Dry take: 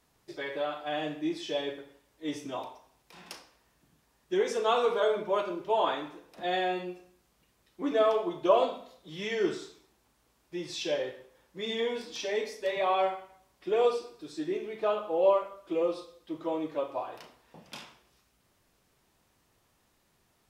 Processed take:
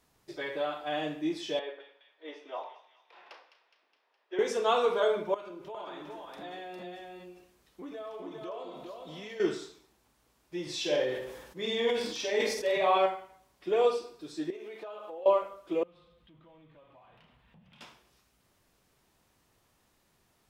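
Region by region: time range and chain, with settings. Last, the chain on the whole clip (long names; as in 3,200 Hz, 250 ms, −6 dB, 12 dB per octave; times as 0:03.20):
0:01.59–0:04.39: high-pass filter 450 Hz 24 dB per octave + high-frequency loss of the air 320 metres + delay with a high-pass on its return 208 ms, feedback 60%, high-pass 2,000 Hz, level −10 dB
0:05.34–0:09.40: downward compressor 4 to 1, threshold −42 dBFS + single-tap delay 405 ms −3.5 dB
0:10.62–0:13.06: double-tracking delay 47 ms −3.5 dB + level that may fall only so fast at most 54 dB per second
0:14.50–0:15.26: high-pass filter 350 Hz + downward compressor 8 to 1, threshold −39 dBFS
0:15.83–0:17.81: mu-law and A-law mismatch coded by mu + drawn EQ curve 200 Hz 0 dB, 310 Hz −17 dB, 3,200 Hz −7 dB, 5,300 Hz −24 dB + downward compressor 3 to 1, threshold −59 dBFS
whole clip: no processing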